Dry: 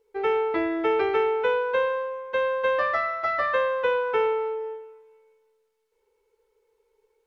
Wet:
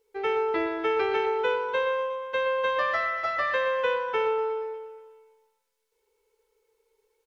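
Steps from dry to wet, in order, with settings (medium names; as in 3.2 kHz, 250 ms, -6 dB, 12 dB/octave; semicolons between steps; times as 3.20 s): treble shelf 2.5 kHz +8.5 dB; on a send: feedback delay 120 ms, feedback 60%, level -10 dB; on the sum: trim -4 dB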